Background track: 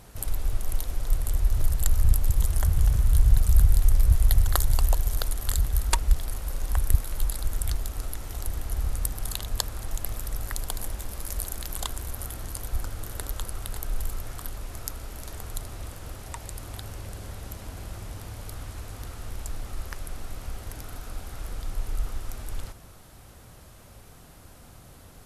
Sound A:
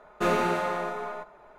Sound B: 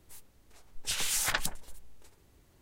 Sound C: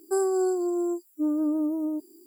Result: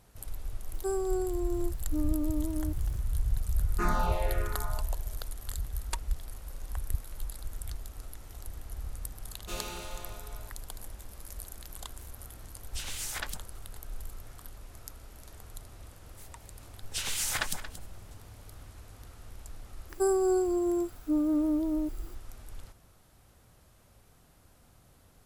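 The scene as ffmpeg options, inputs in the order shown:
-filter_complex "[3:a]asplit=2[s0][s1];[1:a]asplit=2[s2][s3];[2:a]asplit=2[s4][s5];[0:a]volume=0.282[s6];[s2]asplit=2[s7][s8];[s8]afreqshift=-1.3[s9];[s7][s9]amix=inputs=2:normalize=1[s10];[s3]aexciter=amount=6:drive=6.3:freq=2700[s11];[s5]aecho=1:1:229:0.211[s12];[s0]atrim=end=2.26,asetpts=PTS-STARTPTS,volume=0.447,afade=t=in:d=0.004:c=hsin,afade=t=out:st=2.256:d=0.004:c=hsin,adelay=730[s13];[s10]atrim=end=1.58,asetpts=PTS-STARTPTS,volume=0.668,afade=t=in:d=0.004:c=hsin,afade=t=out:st=1.576:d=0.004:c=hsin,adelay=3580[s14];[s11]atrim=end=1.58,asetpts=PTS-STARTPTS,volume=0.126,afade=t=in:d=0.004:c=hsin,afade=t=out:st=1.576:d=0.004:c=hsin,adelay=9270[s15];[s4]atrim=end=2.61,asetpts=PTS-STARTPTS,volume=0.447,afade=t=in:d=0.004:c=hsin,afade=t=out:st=2.606:d=0.004:c=hsin,adelay=11880[s16];[s12]atrim=end=2.61,asetpts=PTS-STARTPTS,volume=0.841,afade=t=in:d=0.004:c=hsin,afade=t=out:st=2.606:d=0.004:c=hsin,adelay=16070[s17];[s1]atrim=end=2.26,asetpts=PTS-STARTPTS,volume=0.841,afade=t=in:d=0.004:c=hsin,afade=t=out:st=2.256:d=0.004:c=hsin,adelay=19890[s18];[s6][s13][s14][s15][s16][s17][s18]amix=inputs=7:normalize=0"

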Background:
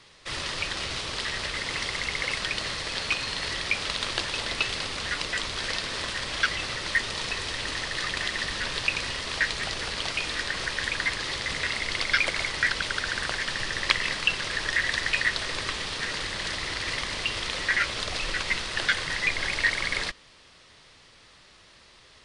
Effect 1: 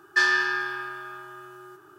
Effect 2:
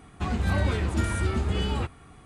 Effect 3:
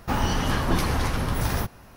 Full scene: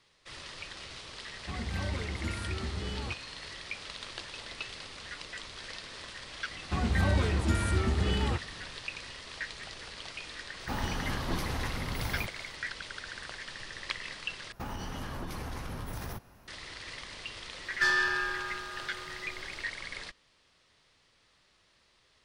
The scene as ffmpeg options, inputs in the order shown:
-filter_complex "[2:a]asplit=2[s0][s1];[3:a]asplit=2[s2][s3];[0:a]volume=0.224[s4];[s3]acompressor=threshold=0.0562:ratio=6:attack=3.2:release=140:knee=1:detection=peak[s5];[1:a]aeval=exprs='(tanh(5.62*val(0)+0.2)-tanh(0.2))/5.62':c=same[s6];[s4]asplit=2[s7][s8];[s7]atrim=end=14.524[s9];[s5]atrim=end=1.96,asetpts=PTS-STARTPTS,volume=0.355[s10];[s8]atrim=start=16.476[s11];[s0]atrim=end=2.25,asetpts=PTS-STARTPTS,volume=0.316,afade=t=in:d=0.004:c=hsin,afade=t=out:st=2.246:d=0.004:c=hsin,adelay=1270[s12];[s1]atrim=end=2.25,asetpts=PTS-STARTPTS,volume=0.794,afade=t=in:d=0.004:c=hsin,afade=t=out:st=2.246:d=0.004:c=hsin,adelay=6510[s13];[s2]atrim=end=1.96,asetpts=PTS-STARTPTS,volume=0.316,afade=t=in:d=0.004:c=hsin,afade=t=out:st=1.956:d=0.004:c=hsin,adelay=10600[s14];[s6]atrim=end=1.98,asetpts=PTS-STARTPTS,volume=0.668,afade=t=in:d=0.004:c=hsin,afade=t=out:st=1.976:d=0.004:c=hsin,adelay=17650[s15];[s9][s10]acrossfade=d=0.004:c1=hsin:c2=hsin[s16];[s16][s11]acrossfade=d=0.004:c1=hsin:c2=hsin[s17];[s17][s12][s13][s14][s15]amix=inputs=5:normalize=0"

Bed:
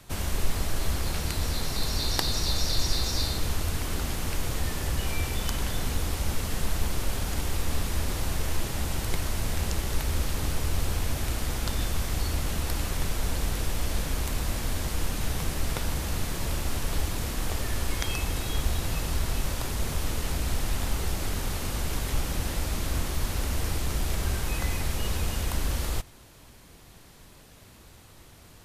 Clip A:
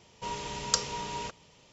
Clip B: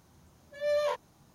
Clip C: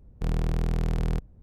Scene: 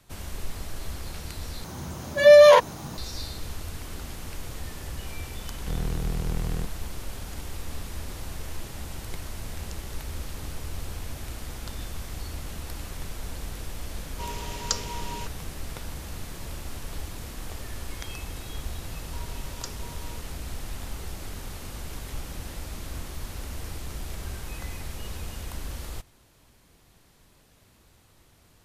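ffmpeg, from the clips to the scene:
-filter_complex "[1:a]asplit=2[s0][s1];[0:a]volume=0.422[s2];[2:a]alimiter=level_in=25.1:limit=0.891:release=50:level=0:latency=1[s3];[s2]asplit=2[s4][s5];[s4]atrim=end=1.644[s6];[s3]atrim=end=1.34,asetpts=PTS-STARTPTS,volume=0.596[s7];[s5]atrim=start=2.976[s8];[3:a]atrim=end=1.42,asetpts=PTS-STARTPTS,volume=0.708,afade=t=in:d=0.004:c=hsin,afade=t=out:st=1.416:d=0.004:c=hsin,adelay=5460[s9];[s0]atrim=end=1.72,asetpts=PTS-STARTPTS,volume=0.891,afade=t=in:d=0.004:c=hsin,afade=t=out:st=1.716:d=0.004:c=hsin,adelay=13970[s10];[s1]atrim=end=1.72,asetpts=PTS-STARTPTS,volume=0.251,afade=t=in:d=0.004:c=hsin,afade=t=out:st=1.716:d=0.004:c=hsin,adelay=18900[s11];[s6][s7]acrossfade=d=0.004:c1=hsin:c2=hsin[s12];[s12][s8]acrossfade=d=0.004:c1=hsin:c2=hsin[s13];[s13][s9][s10][s11]amix=inputs=4:normalize=0"

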